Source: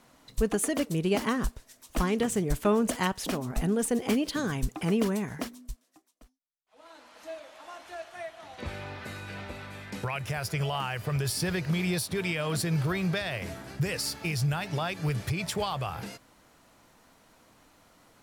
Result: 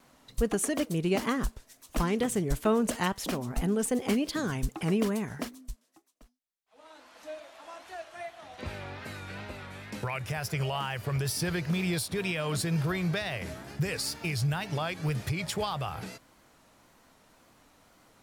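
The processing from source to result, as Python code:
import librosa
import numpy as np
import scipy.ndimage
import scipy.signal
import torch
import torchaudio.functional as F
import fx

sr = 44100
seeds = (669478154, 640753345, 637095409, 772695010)

y = fx.wow_flutter(x, sr, seeds[0], rate_hz=2.1, depth_cents=84.0)
y = y * 10.0 ** (-1.0 / 20.0)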